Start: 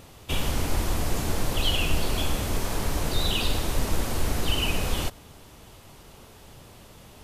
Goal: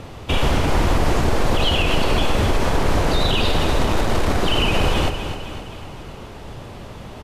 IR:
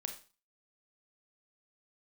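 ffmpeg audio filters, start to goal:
-filter_complex "[0:a]flanger=delay=8.4:depth=8:regen=-86:speed=1.2:shape=sinusoidal,asettb=1/sr,asplit=3[a][b][c];[a]atrim=end=3.794[d];[b]atrim=start=3.79:end=4.4,asetpts=PTS-STARTPTS,afade=t=in:d=0.004:c=qsin,afade=t=out:st=0.606:d=0.004:c=qsin,aeval=exprs='0.15*(cos(1*acos(clip(val(0)/0.15,-1,1)))-cos(1*PI/2))+0.00841*(cos(7*acos(clip(val(0)/0.15,-1,1)))-cos(7*PI/2))':c=same[e];[c]atrim=start=4.396[f];[d][e]acrossfade=d=0.004:c1=hsin:c2=qsin[g];[g][f]acrossfade=d=0.004:c1=qsin:c2=hsin,acrossover=split=300[h][i];[h]volume=32dB,asoftclip=hard,volume=-32dB[j];[j][i]amix=inputs=2:normalize=0,aemphasis=mode=reproduction:type=75fm,asplit=2[k][l];[l]aecho=0:1:259|518|777|1036|1295|1554:0.282|0.149|0.0792|0.042|0.0222|0.0118[m];[k][m]amix=inputs=2:normalize=0,alimiter=level_in=25dB:limit=-1dB:release=50:level=0:latency=1,volume=-8dB"

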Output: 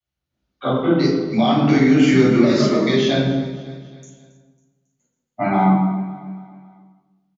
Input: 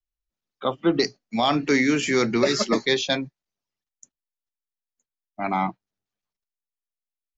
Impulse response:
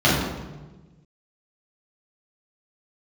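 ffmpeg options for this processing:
-filter_complex "[0:a]acompressor=threshold=-29dB:ratio=6,aecho=1:1:274|548|822|1096:0.141|0.0692|0.0339|0.0166[a];[1:a]atrim=start_sample=2205[b];[a][b]afir=irnorm=-1:irlink=0,volume=-9.5dB"

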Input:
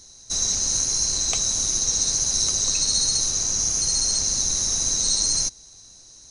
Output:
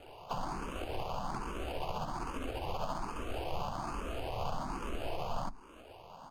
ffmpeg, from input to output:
-filter_complex "[0:a]acrossover=split=190|1000[a][b][c];[c]acompressor=threshold=-33dB:ratio=8[d];[a][b][d]amix=inputs=3:normalize=0,acrusher=samples=17:mix=1:aa=0.000001,bandreject=f=50:t=h:w=6,bandreject=f=100:t=h:w=6,bandreject=f=150:t=h:w=6,bandreject=f=200:t=h:w=6,bandreject=f=250:t=h:w=6,bandreject=f=300:t=h:w=6,bandreject=f=350:t=h:w=6,asetrate=32097,aresample=44100,atempo=1.37395,lowpass=f=2.7k:p=1,asplit=4[e][f][g][h];[f]asetrate=37084,aresample=44100,atempo=1.18921,volume=-11dB[i];[g]asetrate=52444,aresample=44100,atempo=0.840896,volume=-14dB[j];[h]asetrate=58866,aresample=44100,atempo=0.749154,volume=-13dB[k];[e][i][j][k]amix=inputs=4:normalize=0,asplit=2[l][m];[m]afreqshift=1.2[n];[l][n]amix=inputs=2:normalize=1,volume=-1dB"

